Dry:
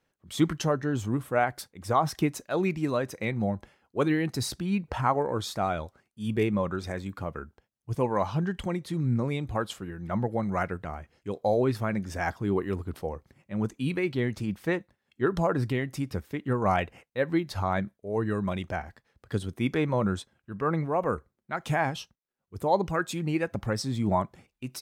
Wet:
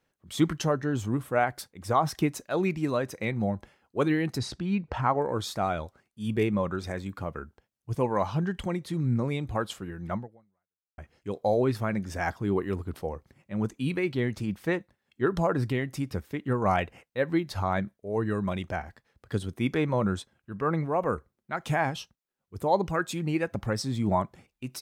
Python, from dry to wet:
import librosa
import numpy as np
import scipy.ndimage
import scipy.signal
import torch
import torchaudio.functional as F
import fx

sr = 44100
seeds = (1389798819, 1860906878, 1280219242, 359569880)

y = fx.air_absorb(x, sr, metres=81.0, at=(4.38, 5.22))
y = fx.edit(y, sr, fx.fade_out_span(start_s=10.13, length_s=0.85, curve='exp'), tone=tone)